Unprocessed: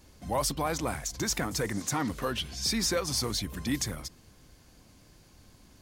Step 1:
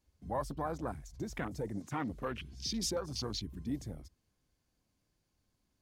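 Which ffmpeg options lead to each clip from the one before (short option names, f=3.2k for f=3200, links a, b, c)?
-af "afwtdn=0.02,volume=-6dB"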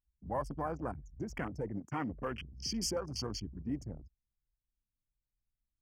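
-af "asuperstop=centerf=3800:order=20:qfactor=3.3,anlmdn=0.0158"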